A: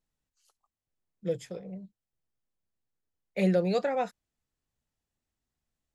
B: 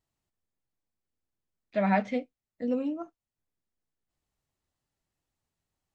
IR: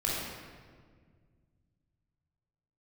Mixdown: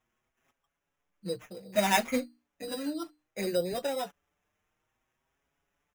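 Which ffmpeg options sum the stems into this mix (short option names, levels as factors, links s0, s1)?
-filter_complex "[0:a]volume=1[s0];[1:a]highshelf=f=2100:g=11.5,bandreject=f=60:t=h:w=6,bandreject=f=120:t=h:w=6,bandreject=f=180:t=h:w=6,bandreject=f=240:t=h:w=6,bandreject=f=300:t=h:w=6,volume=1.41[s1];[s0][s1]amix=inputs=2:normalize=0,acrusher=samples=10:mix=1:aa=0.000001,aeval=exprs='0.422*(cos(1*acos(clip(val(0)/0.422,-1,1)))-cos(1*PI/2))+0.0075*(cos(7*acos(clip(val(0)/0.422,-1,1)))-cos(7*PI/2))':c=same,asplit=2[s2][s3];[s3]adelay=6,afreqshift=0.62[s4];[s2][s4]amix=inputs=2:normalize=1"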